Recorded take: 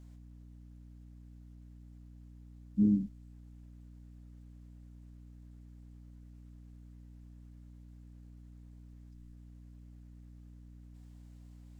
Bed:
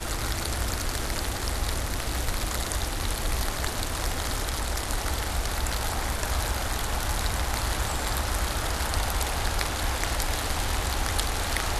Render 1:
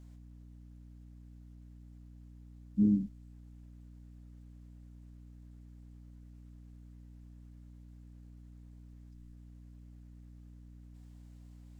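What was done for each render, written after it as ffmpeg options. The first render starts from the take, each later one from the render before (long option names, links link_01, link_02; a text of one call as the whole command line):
ffmpeg -i in.wav -af anull out.wav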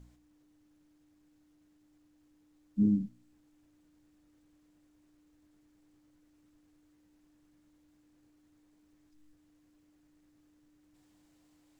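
ffmpeg -i in.wav -af "bandreject=frequency=60:width_type=h:width=4,bandreject=frequency=120:width_type=h:width=4,bandreject=frequency=180:width_type=h:width=4,bandreject=frequency=240:width_type=h:width=4" out.wav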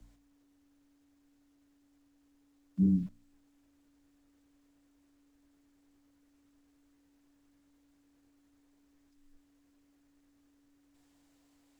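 ffmpeg -i in.wav -filter_complex "[0:a]acrossover=split=130|210[link_01][link_02][link_03];[link_02]aeval=exprs='val(0)*gte(abs(val(0)),0.00141)':channel_layout=same[link_04];[link_01][link_04][link_03]amix=inputs=3:normalize=0,afreqshift=-16" out.wav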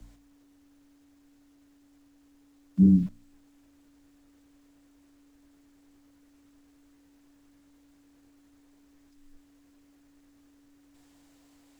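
ffmpeg -i in.wav -af "volume=8dB" out.wav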